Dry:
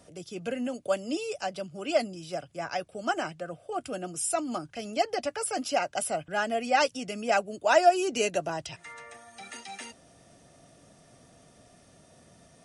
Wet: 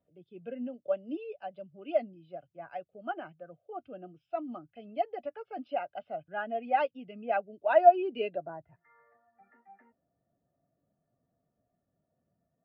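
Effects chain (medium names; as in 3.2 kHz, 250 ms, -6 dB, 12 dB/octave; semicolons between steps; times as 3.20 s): steep low-pass 3.8 kHz 36 dB/octave, from 8.35 s 1.9 kHz; spectral contrast expander 1.5:1; trim +1.5 dB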